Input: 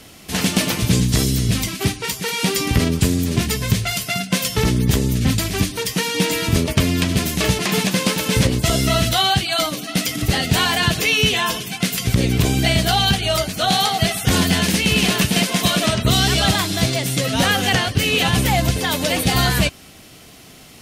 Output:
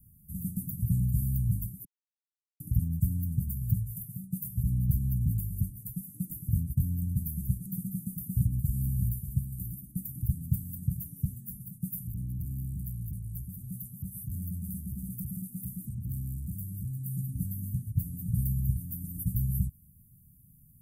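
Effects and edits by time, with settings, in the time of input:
0:01.85–0:02.60: silence
0:08.20–0:09.32: delay throw 590 ms, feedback 15%, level −9.5 dB
0:12.02–0:17.15: saturating transformer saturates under 900 Hz
whole clip: inverse Chebyshev band-stop filter 510–4,800 Hz, stop band 60 dB; dynamic equaliser 560 Hz, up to −4 dB, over −50 dBFS, Q 2; level −7.5 dB

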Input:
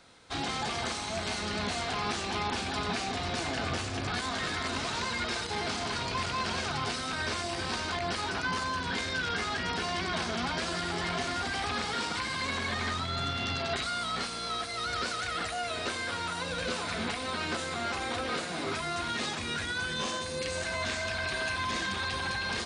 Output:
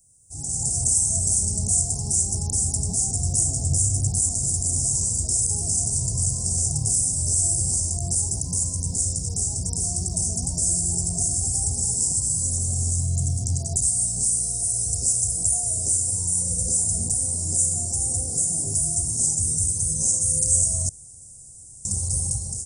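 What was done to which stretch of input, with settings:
0:20.89–0:21.85: fill with room tone
whole clip: elliptic band-stop filter 770–5,100 Hz, stop band 50 dB; automatic gain control gain up to 15 dB; drawn EQ curve 130 Hz 0 dB, 230 Hz −17 dB, 2,700 Hz −30 dB, 4,300 Hz −22 dB, 7,700 Hz +14 dB

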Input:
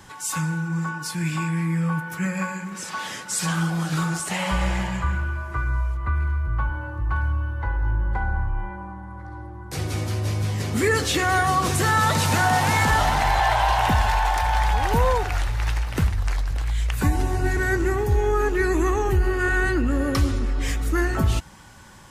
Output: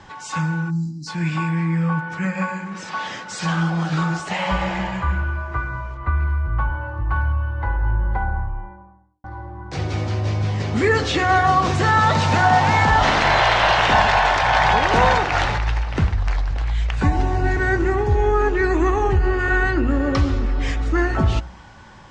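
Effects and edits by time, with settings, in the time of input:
0:00.70–0:01.07: time-frequency box erased 340–3,900 Hz
0:07.95–0:09.24: fade out and dull
0:13.02–0:15.57: ceiling on every frequency bin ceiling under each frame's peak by 18 dB
whole clip: Bessel low-pass filter 4,200 Hz, order 8; parametric band 750 Hz +3.5 dB 0.88 octaves; hum removal 60.87 Hz, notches 27; level +3 dB

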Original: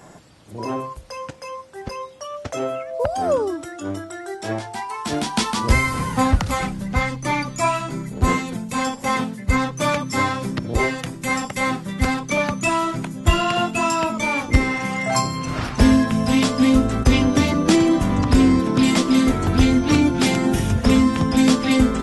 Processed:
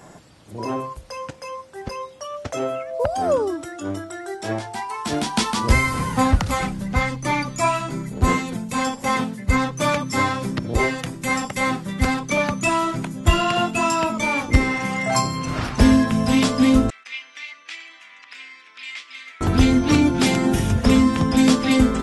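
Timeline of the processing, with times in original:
0:16.90–0:19.41: four-pole ladder band-pass 2,600 Hz, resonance 50%

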